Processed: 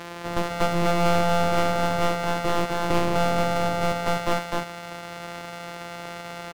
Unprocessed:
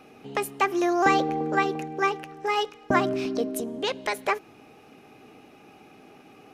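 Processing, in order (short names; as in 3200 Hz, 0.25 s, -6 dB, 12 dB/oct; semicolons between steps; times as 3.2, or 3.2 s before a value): sample sorter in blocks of 256 samples; echo 0.254 s -6.5 dB; overdrive pedal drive 31 dB, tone 3600 Hz, clips at -9 dBFS; gain -4 dB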